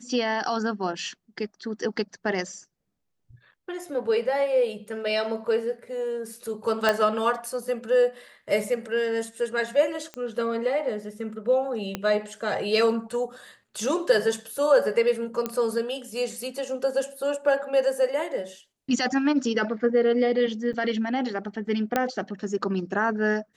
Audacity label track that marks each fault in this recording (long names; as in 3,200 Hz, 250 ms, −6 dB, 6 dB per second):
6.890000	6.890000	click −8 dBFS
10.140000	10.140000	click −21 dBFS
11.950000	11.950000	click −13 dBFS
15.460000	15.460000	click −13 dBFS
20.730000	20.740000	drop-out 6.5 ms
21.960000	21.960000	click −9 dBFS